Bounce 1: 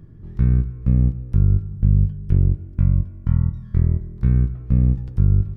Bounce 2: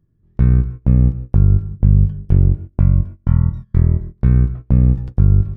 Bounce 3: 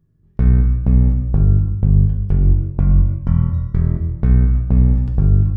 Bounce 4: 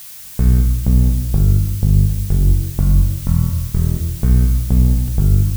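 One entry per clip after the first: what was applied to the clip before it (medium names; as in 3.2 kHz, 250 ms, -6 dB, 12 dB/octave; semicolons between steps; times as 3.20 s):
band-stop 830 Hz, Q 26; gate -29 dBFS, range -23 dB; dynamic bell 880 Hz, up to +5 dB, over -42 dBFS, Q 0.84; trim +4 dB
peak limiter -6 dBFS, peak gain reduction 4.5 dB; gated-style reverb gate 370 ms falling, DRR 2.5 dB
added noise blue -35 dBFS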